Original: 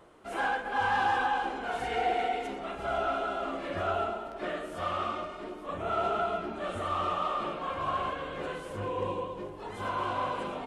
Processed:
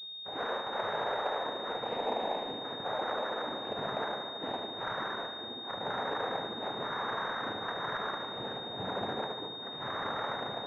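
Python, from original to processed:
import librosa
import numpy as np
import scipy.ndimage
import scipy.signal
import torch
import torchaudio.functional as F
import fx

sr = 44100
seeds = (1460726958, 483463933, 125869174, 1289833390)

p1 = fx.peak_eq(x, sr, hz=230.0, db=-3.5, octaves=1.2)
p2 = fx.over_compress(p1, sr, threshold_db=-33.0, ratio=-1.0)
p3 = p1 + (p2 * 10.0 ** (-3.0 / 20.0))
p4 = np.sign(p3) * np.maximum(np.abs(p3) - 10.0 ** (-51.0 / 20.0), 0.0)
p5 = fx.noise_vocoder(p4, sr, seeds[0], bands=6)
p6 = p5 + fx.echo_feedback(p5, sr, ms=74, feedback_pct=60, wet_db=-8.5, dry=0)
p7 = fx.pwm(p6, sr, carrier_hz=3700.0)
y = p7 * 10.0 ** (-6.5 / 20.0)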